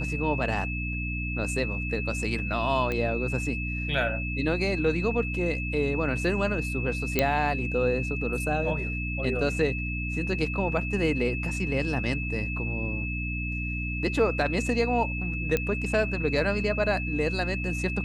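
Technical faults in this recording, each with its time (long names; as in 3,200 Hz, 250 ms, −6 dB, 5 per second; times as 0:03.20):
mains hum 60 Hz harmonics 5 −32 dBFS
whistle 2,600 Hz −33 dBFS
0:02.92: click −17 dBFS
0:07.19: click −7 dBFS
0:15.57: click −12 dBFS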